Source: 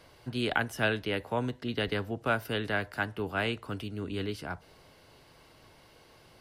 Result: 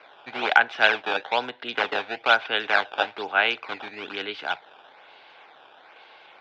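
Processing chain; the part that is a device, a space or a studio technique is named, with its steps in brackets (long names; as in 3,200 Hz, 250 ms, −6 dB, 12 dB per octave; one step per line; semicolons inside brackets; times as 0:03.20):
circuit-bent sampling toy (sample-and-hold swept by an LFO 12×, swing 160% 1.1 Hz; loudspeaker in its box 520–4,000 Hz, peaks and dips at 800 Hz +9 dB, 1,500 Hz +7 dB, 2,400 Hz +8 dB, 3,500 Hz +9 dB)
level +5.5 dB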